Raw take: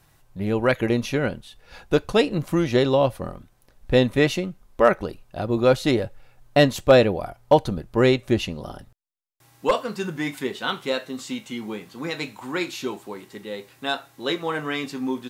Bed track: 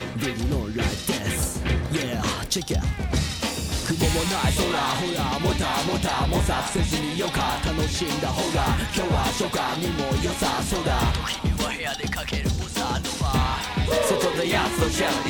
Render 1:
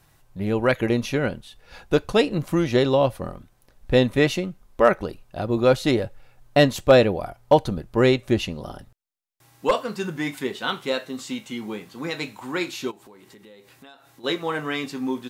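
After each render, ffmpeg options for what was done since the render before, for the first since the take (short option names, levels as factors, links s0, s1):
-filter_complex "[0:a]asplit=3[s0][s1][s2];[s0]afade=t=out:st=12.9:d=0.02[s3];[s1]acompressor=threshold=0.00562:ratio=6:attack=3.2:release=140:knee=1:detection=peak,afade=t=in:st=12.9:d=0.02,afade=t=out:st=14.23:d=0.02[s4];[s2]afade=t=in:st=14.23:d=0.02[s5];[s3][s4][s5]amix=inputs=3:normalize=0"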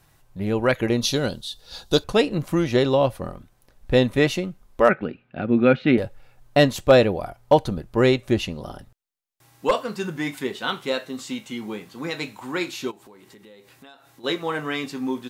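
-filter_complex "[0:a]asettb=1/sr,asplit=3[s0][s1][s2];[s0]atrim=end=1.014[s3];[s1]atrim=start=1.01:end=2.04,asetpts=PTS-STARTPTS,afade=t=in:d=0.004:c=qsin,afade=t=out:st=1.026:d=0.004:c=qsin,highshelf=f=3000:t=q:w=3:g=8.5[s4];[s2]atrim=start=2.036[s5];[s3][s4]acrossfade=d=0.004:c1=hsin:c2=qsin[s6];[s6][s5]acrossfade=d=0.004:c1=qsin:c2=hsin,asettb=1/sr,asplit=3[s7][s8][s9];[s7]atrim=end=4.894[s10];[s8]atrim=start=4.89:end=5.98,asetpts=PTS-STARTPTS,afade=t=in:d=0.004:c=qsin,afade=t=out:st=1.086:d=0.004:c=qsin,highpass=120,equalizer=f=150:t=q:w=4:g=4,equalizer=f=240:t=q:w=4:g=9,equalizer=f=640:t=q:w=4:g=-4,equalizer=f=1000:t=q:w=4:g=-9,equalizer=f=1500:t=q:w=4:g=6,equalizer=f=2400:t=q:w=4:g=7,lowpass=f=3000:w=0.5412,lowpass=f=3000:w=1.3066[s11];[s9]atrim=start=5.976[s12];[s10][s11]acrossfade=d=0.004:c1=hsin:c2=qsin[s13];[s13][s12]acrossfade=d=0.004:c1=qsin:c2=hsin"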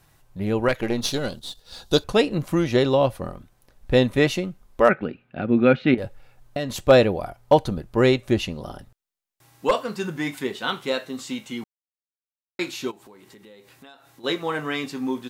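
-filter_complex "[0:a]asettb=1/sr,asplit=3[s0][s1][s2];[s0]atrim=end=0.684[s3];[s1]atrim=start=0.68:end=1.8,asetpts=PTS-STARTPTS,afade=t=in:d=0.004:c=qsin,afade=t=out:st=1.116:d=0.004:c=qsin,aeval=exprs='if(lt(val(0),0),0.447*val(0),val(0))':c=same[s4];[s2]atrim=start=1.796[s5];[s3][s4]acrossfade=d=0.004:c1=hsin:c2=qsin[s6];[s6][s5]acrossfade=d=0.004:c1=qsin:c2=hsin,asettb=1/sr,asplit=3[s7][s8][s9];[s7]atrim=end=5.944[s10];[s8]atrim=start=5.94:end=6.7,asetpts=PTS-STARTPTS,afade=t=in:d=0.004:c=qsin,afade=t=out:st=0.756:d=0.004:c=qsin,acompressor=threshold=0.0708:ratio=6:attack=3.2:release=140:knee=1:detection=peak[s11];[s9]atrim=start=6.696[s12];[s10][s11]acrossfade=d=0.004:c1=hsin:c2=qsin[s13];[s13][s12]acrossfade=d=0.004:c1=qsin:c2=hsin,asplit=3[s14][s15][s16];[s14]atrim=end=11.64,asetpts=PTS-STARTPTS,afade=t=out:st=11.636:d=0.004:c=hsin[s17];[s15]atrim=start=11.64:end=12.59,asetpts=PTS-STARTPTS,volume=0[s18];[s16]atrim=start=12.59,asetpts=PTS-STARTPTS,afade=t=in:d=0.004:c=hsin[s19];[s17][s18][s19]concat=n=3:v=0:a=1"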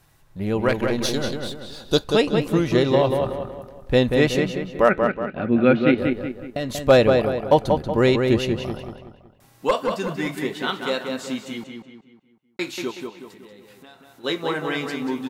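-filter_complex "[0:a]asplit=2[s0][s1];[s1]adelay=186,lowpass=f=3600:p=1,volume=0.596,asplit=2[s2][s3];[s3]adelay=186,lowpass=f=3600:p=1,volume=0.44,asplit=2[s4][s5];[s5]adelay=186,lowpass=f=3600:p=1,volume=0.44,asplit=2[s6][s7];[s7]adelay=186,lowpass=f=3600:p=1,volume=0.44,asplit=2[s8][s9];[s9]adelay=186,lowpass=f=3600:p=1,volume=0.44[s10];[s0][s2][s4][s6][s8][s10]amix=inputs=6:normalize=0"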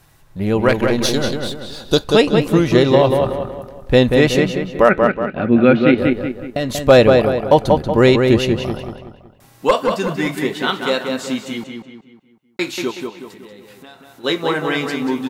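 -af "volume=2,alimiter=limit=0.891:level=0:latency=1"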